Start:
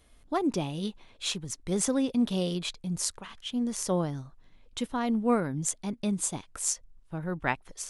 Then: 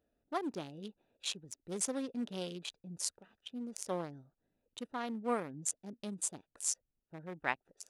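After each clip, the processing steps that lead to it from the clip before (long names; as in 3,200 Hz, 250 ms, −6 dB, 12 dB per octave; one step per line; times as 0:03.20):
adaptive Wiener filter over 41 samples
high-pass filter 610 Hz 6 dB per octave
level −3.5 dB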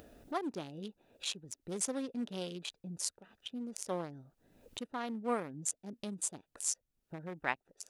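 upward compression, threshold −38 dBFS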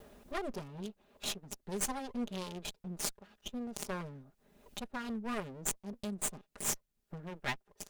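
lower of the sound and its delayed copy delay 4.9 ms
level +2.5 dB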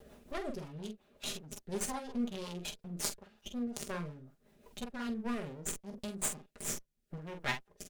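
ambience of single reflections 13 ms −10 dB, 46 ms −6.5 dB
rotating-speaker cabinet horn 5.5 Hz, later 0.8 Hz, at 0:04.99
level +1 dB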